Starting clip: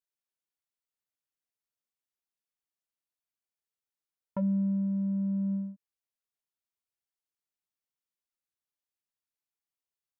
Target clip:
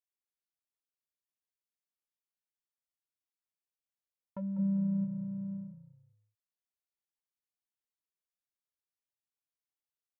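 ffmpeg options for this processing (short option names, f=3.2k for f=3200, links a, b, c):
-filter_complex "[0:a]asplit=3[a][b][c];[a]afade=t=out:st=4.58:d=0.02[d];[b]acontrast=86,afade=t=in:st=4.58:d=0.02,afade=t=out:st=5.04:d=0.02[e];[c]afade=t=in:st=5.04:d=0.02[f];[d][e][f]amix=inputs=3:normalize=0,asplit=4[g][h][i][j];[h]adelay=197,afreqshift=-30,volume=-13.5dB[k];[i]adelay=394,afreqshift=-60,volume=-22.9dB[l];[j]adelay=591,afreqshift=-90,volume=-32.2dB[m];[g][k][l][m]amix=inputs=4:normalize=0,volume=-8.5dB"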